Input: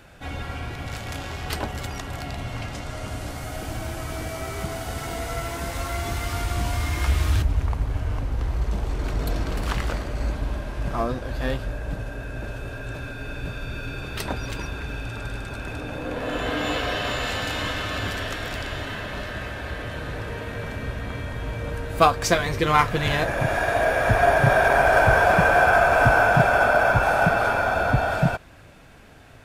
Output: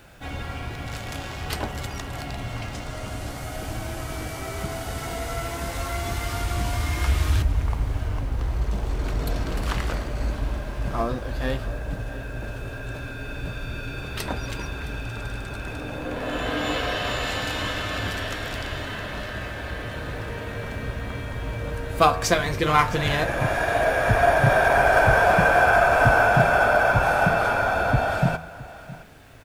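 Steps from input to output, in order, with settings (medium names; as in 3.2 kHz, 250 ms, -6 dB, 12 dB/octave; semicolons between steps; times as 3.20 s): de-hum 81.38 Hz, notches 33; on a send: delay 665 ms -18 dB; on the sum: bit crusher 10-bit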